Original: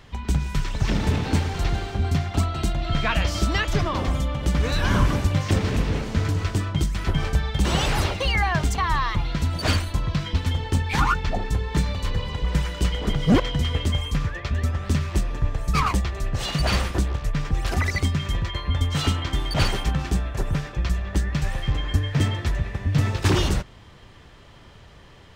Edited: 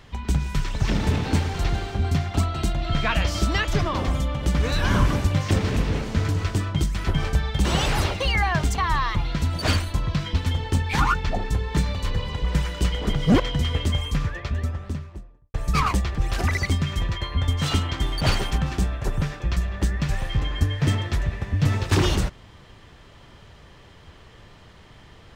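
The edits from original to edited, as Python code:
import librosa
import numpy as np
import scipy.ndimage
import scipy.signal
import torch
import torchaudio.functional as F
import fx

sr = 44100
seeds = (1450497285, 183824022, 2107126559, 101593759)

y = fx.studio_fade_out(x, sr, start_s=14.2, length_s=1.34)
y = fx.edit(y, sr, fx.cut(start_s=16.15, length_s=1.33), tone=tone)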